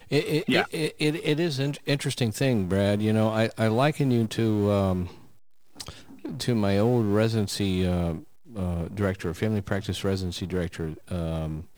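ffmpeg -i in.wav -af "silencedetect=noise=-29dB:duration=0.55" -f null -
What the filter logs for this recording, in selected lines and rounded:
silence_start: 5.05
silence_end: 5.81 | silence_duration: 0.75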